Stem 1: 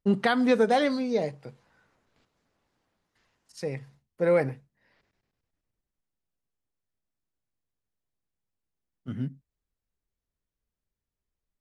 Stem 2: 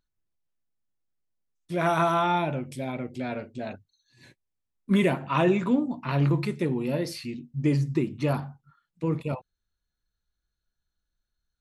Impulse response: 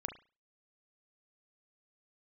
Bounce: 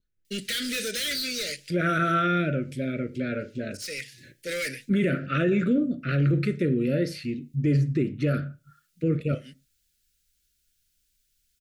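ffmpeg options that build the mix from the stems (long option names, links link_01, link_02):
-filter_complex "[0:a]highpass=190,aexciter=amount=7.6:drive=9.6:freq=2000,volume=23dB,asoftclip=hard,volume=-23dB,adelay=250,volume=-5dB[link_01];[1:a]highshelf=frequency=3600:gain=-9,volume=1dB,asplit=3[link_02][link_03][link_04];[link_03]volume=-6dB[link_05];[link_04]apad=whole_len=522725[link_06];[link_01][link_06]sidechaincompress=threshold=-44dB:ratio=6:attack=16:release=251[link_07];[2:a]atrim=start_sample=2205[link_08];[link_05][link_08]afir=irnorm=-1:irlink=0[link_09];[link_07][link_02][link_09]amix=inputs=3:normalize=0,adynamicequalizer=threshold=0.00891:dfrequency=1400:dqfactor=2.4:tfrequency=1400:tqfactor=2.4:attack=5:release=100:ratio=0.375:range=3:mode=boostabove:tftype=bell,asuperstop=centerf=900:order=8:qfactor=1.2,alimiter=limit=-15.5dB:level=0:latency=1:release=27"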